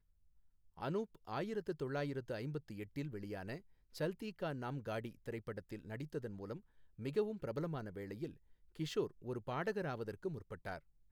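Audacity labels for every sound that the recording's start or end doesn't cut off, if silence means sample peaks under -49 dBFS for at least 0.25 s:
0.780000	3.590000	sound
3.950000	6.590000	sound
6.990000	8.310000	sound
8.750000	10.790000	sound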